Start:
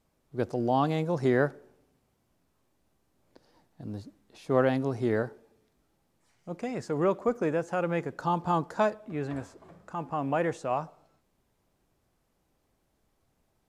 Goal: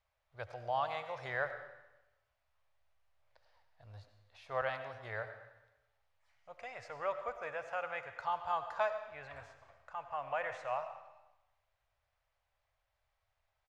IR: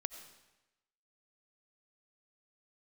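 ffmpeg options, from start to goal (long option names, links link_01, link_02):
-filter_complex "[0:a]asettb=1/sr,asplit=3[link_01][link_02][link_03];[link_01]atrim=end=4.614[link_04];[link_02]atrim=start=4.61:end=5.27,asetpts=PTS-STARTPTS,afade=type=in:duration=0.004:curve=qsin,afade=type=out:start_time=0.656:duration=0.004:curve=qsin,agate=range=-33dB:threshold=-25dB:ratio=3:detection=peak[link_05];[link_03]atrim=start=5.266[link_06];[link_04][link_05]acrossfade=duration=0.004:curve1=hsin:curve2=qsin[link_07];[link_07][link_06]acrossfade=duration=0.004:curve1=qsin:curve2=hsin,firequalizer=gain_entry='entry(100,0);entry(170,-24);entry(320,-25);entry(570,1);entry(2000,7);entry(8100,-9)':delay=0.05:min_phase=1[link_08];[1:a]atrim=start_sample=2205[link_09];[link_08][link_09]afir=irnorm=-1:irlink=0,volume=-7.5dB"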